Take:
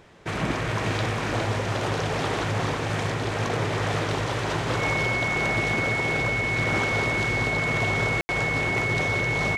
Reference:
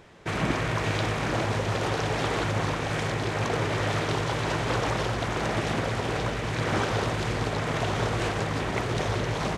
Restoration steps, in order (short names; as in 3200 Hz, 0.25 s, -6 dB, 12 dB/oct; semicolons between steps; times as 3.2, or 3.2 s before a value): clip repair -16 dBFS; notch 2200 Hz, Q 30; room tone fill 8.21–8.29; inverse comb 0.41 s -6.5 dB